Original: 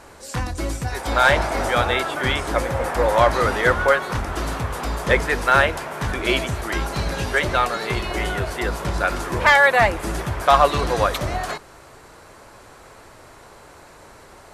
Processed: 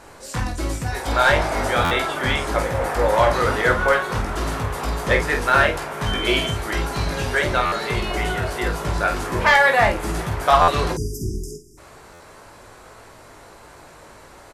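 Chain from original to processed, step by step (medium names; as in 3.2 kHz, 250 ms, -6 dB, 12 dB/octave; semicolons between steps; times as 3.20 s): 10.92–11.78 s: spectral selection erased 450–4800 Hz; in parallel at -5.5 dB: saturation -13.5 dBFS, distortion -11 dB; 6.05–6.51 s: on the sum: whistle 3.1 kHz -26 dBFS; on a send: early reflections 19 ms -6 dB, 48 ms -7 dB; on the sum: buffer glitch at 1.84/7.65/10.61/12.13 s, samples 512, times 5; trim -4.5 dB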